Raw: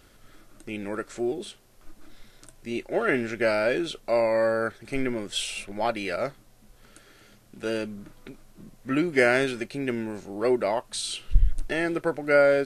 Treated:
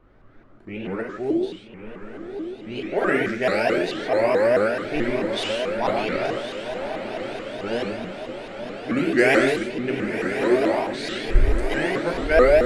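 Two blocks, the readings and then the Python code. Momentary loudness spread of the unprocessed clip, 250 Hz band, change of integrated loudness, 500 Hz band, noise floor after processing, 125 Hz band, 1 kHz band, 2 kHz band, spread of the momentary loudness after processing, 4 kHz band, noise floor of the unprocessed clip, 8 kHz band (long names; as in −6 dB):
14 LU, +4.5 dB, +3.5 dB, +4.5 dB, −46 dBFS, +3.5 dB, +4.5 dB, +4.0 dB, 15 LU, +2.5 dB, −56 dBFS, −4.0 dB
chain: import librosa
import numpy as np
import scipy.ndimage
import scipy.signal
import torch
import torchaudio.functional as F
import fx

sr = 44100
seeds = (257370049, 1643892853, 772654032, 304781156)

p1 = fx.env_lowpass(x, sr, base_hz=1300.0, full_db=-20.0)
p2 = p1 + fx.echo_diffused(p1, sr, ms=1071, feedback_pct=67, wet_db=-8, dry=0)
p3 = fx.rev_gated(p2, sr, seeds[0], gate_ms=180, shape='flat', drr_db=-0.5)
y = fx.vibrato_shape(p3, sr, shape='saw_up', rate_hz=4.6, depth_cents=250.0)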